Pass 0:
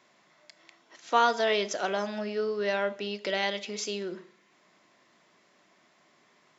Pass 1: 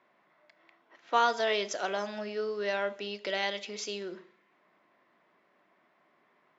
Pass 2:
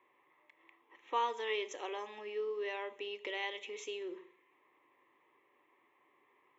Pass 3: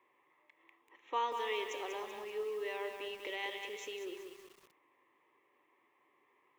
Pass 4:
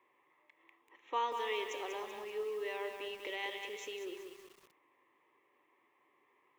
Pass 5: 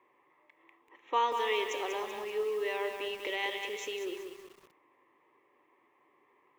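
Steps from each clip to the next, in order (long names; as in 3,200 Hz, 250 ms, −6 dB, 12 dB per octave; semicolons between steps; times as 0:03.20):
low-pass that shuts in the quiet parts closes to 1,900 Hz, open at −27 dBFS; low-shelf EQ 170 Hz −10 dB; level −2 dB
in parallel at +1 dB: downward compressor, threshold −40 dBFS, peak gain reduction 18 dB; on the sum: phaser with its sweep stopped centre 980 Hz, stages 8; level −6.5 dB
feedback echo at a low word length 191 ms, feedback 55%, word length 9 bits, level −6 dB; level −1.5 dB
no processing that can be heard
one half of a high-frequency compander decoder only; level +6 dB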